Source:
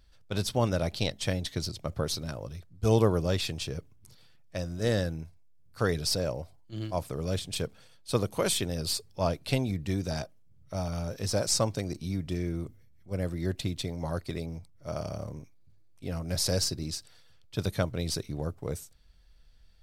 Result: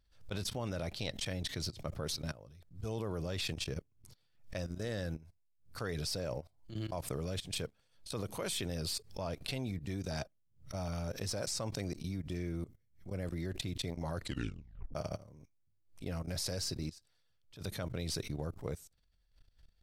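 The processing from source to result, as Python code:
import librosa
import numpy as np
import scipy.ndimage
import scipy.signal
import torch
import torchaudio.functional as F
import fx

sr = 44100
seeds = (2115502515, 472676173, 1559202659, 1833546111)

y = fx.level_steps(x, sr, step_db=20, at=(16.9, 17.6), fade=0.02)
y = fx.edit(y, sr, fx.tape_stop(start_s=14.19, length_s=0.76), tone=tone)
y = fx.level_steps(y, sr, step_db=18)
y = fx.dynamic_eq(y, sr, hz=2100.0, q=1.1, threshold_db=-53.0, ratio=4.0, max_db=3)
y = fx.pre_swell(y, sr, db_per_s=150.0)
y = F.gain(torch.from_numpy(y), -1.5).numpy()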